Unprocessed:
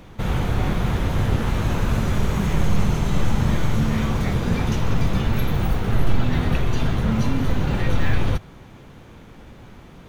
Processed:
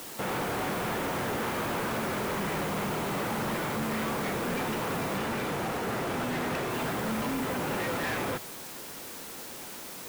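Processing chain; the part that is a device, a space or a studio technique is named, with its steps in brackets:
aircraft radio (band-pass filter 320–2,400 Hz; hard clipping −30.5 dBFS, distortion −9 dB; white noise bed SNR 11 dB)
0:05.17–0:06.70: high-shelf EQ 9,200 Hz −4.5 dB
level +2 dB

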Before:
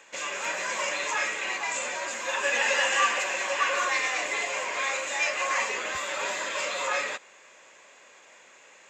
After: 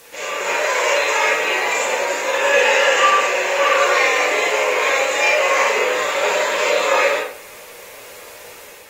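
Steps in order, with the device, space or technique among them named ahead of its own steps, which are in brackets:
0:00.49–0:01.25: high-pass filter 390 Hz 12 dB per octave
filmed off a television (band-pass filter 230–8,000 Hz; parametric band 470 Hz +12 dB 0.38 octaves; convolution reverb RT60 0.50 s, pre-delay 35 ms, DRR −5.5 dB; white noise bed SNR 25 dB; automatic gain control gain up to 4.5 dB; AAC 48 kbit/s 48,000 Hz)

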